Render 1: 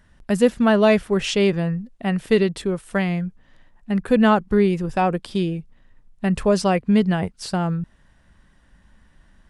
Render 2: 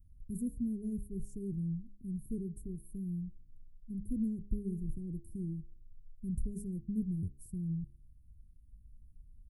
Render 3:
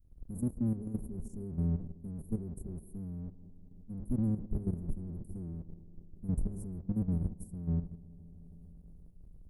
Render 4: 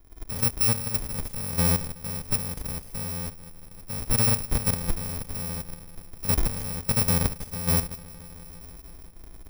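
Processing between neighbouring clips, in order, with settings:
inverse Chebyshev band-stop filter 740–4,000 Hz, stop band 70 dB; comb filter 2.6 ms, depth 69%; hum removal 68.05 Hz, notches 7; level −4.5 dB
sub-octave generator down 1 octave, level −1 dB; bucket-brigade delay 156 ms, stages 1,024, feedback 77%, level −16.5 dB; output level in coarse steps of 11 dB; level +4 dB
samples in bit-reversed order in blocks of 128 samples; level +8.5 dB

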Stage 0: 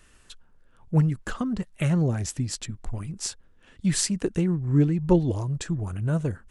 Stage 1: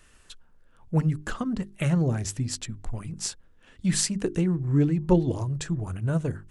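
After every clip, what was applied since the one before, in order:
mains-hum notches 50/100/150/200/250/300/350/400 Hz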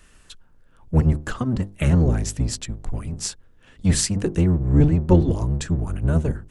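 sub-octave generator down 1 octave, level +1 dB
level +3 dB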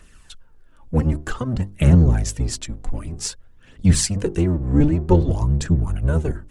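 phase shifter 0.53 Hz, delay 4.1 ms, feedback 45%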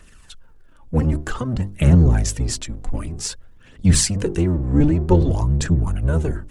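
transient designer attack 0 dB, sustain +5 dB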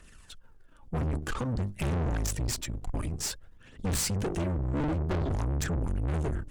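tube saturation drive 27 dB, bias 0.8

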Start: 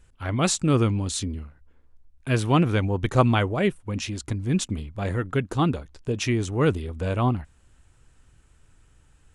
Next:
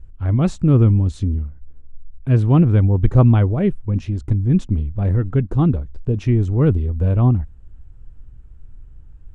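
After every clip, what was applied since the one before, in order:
spectral tilt −4.5 dB per octave
level −3.5 dB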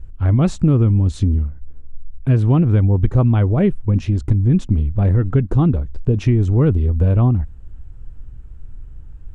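downward compressor 6 to 1, threshold −16 dBFS, peak gain reduction 9 dB
level +5.5 dB

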